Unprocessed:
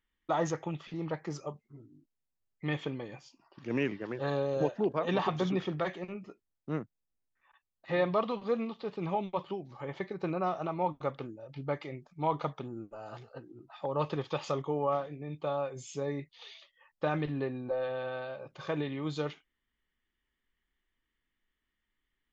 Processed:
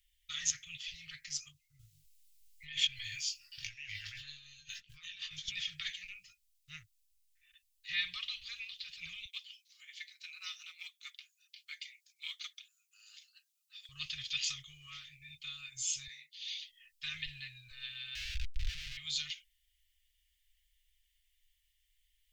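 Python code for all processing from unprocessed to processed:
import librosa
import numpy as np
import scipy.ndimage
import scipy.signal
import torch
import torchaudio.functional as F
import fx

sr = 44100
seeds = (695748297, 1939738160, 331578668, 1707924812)

y = fx.chain(x, sr, fx.over_compress(threshold_db=-41.0, ratio=-1.0),
    fx.doubler(ms=20.0, db=-5), at=(1.79, 5.48))
y = fx.chain(y, sr, fx.brickwall_highpass(low_hz=670.0),
    fx.high_shelf(hz=3200.0, db=9.5),
    fx.upward_expand(threshold_db=-46.0, expansion=1.5), at=(9.25, 13.89))
y = fx.chain(y, sr, fx.highpass(hz=220.0, slope=24),
    fx.detune_double(cents=56), at=(16.07, 16.48))
y = fx.chain(y, sr, fx.schmitt(flips_db=-39.0),
    fx.air_absorb(metres=220.0),
    fx.env_flatten(amount_pct=70), at=(18.15, 18.97))
y = scipy.signal.sosfilt(scipy.signal.cheby2(4, 60, [210.0, 900.0], 'bandstop', fs=sr, output='sos'), y)
y = fx.high_shelf(y, sr, hz=3900.0, db=8.0)
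y = y + 0.36 * np.pad(y, (int(5.6 * sr / 1000.0), 0))[:len(y)]
y = y * 10.0 ** (7.0 / 20.0)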